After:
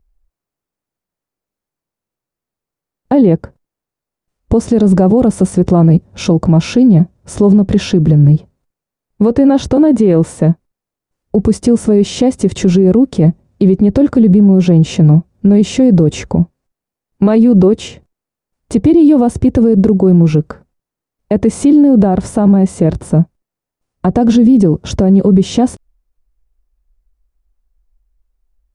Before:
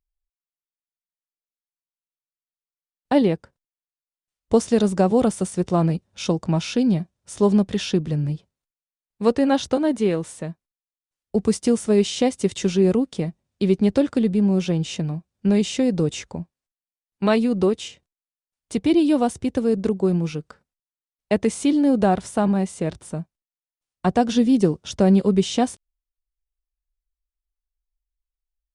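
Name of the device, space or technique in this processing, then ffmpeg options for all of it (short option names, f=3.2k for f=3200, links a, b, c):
mastering chain: -af "equalizer=f=3.3k:t=o:w=0.58:g=-3,acompressor=threshold=-22dB:ratio=2,tiltshelf=f=1.1k:g=8.5,alimiter=level_in=16.5dB:limit=-1dB:release=50:level=0:latency=1,volume=-1dB"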